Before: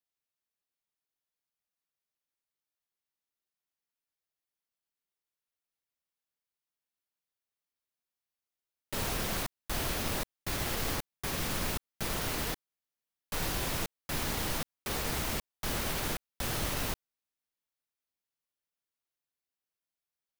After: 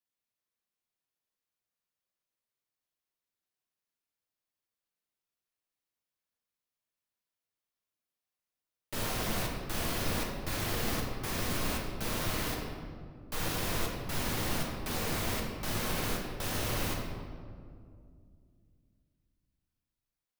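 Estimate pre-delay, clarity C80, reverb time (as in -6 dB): 6 ms, 4.0 dB, 2.2 s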